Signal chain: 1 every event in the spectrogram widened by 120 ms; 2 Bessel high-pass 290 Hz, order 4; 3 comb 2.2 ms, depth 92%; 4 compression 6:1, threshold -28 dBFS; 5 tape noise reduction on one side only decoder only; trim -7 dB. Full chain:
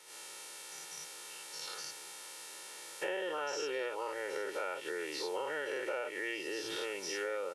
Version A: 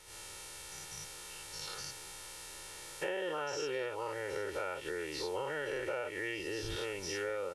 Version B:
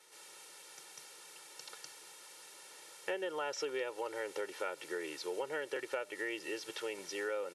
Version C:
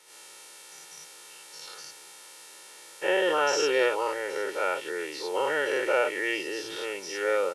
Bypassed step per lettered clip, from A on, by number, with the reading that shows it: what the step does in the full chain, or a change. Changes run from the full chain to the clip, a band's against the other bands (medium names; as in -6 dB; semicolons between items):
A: 2, 250 Hz band +2.0 dB; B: 1, 250 Hz band +2.0 dB; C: 4, mean gain reduction 5.0 dB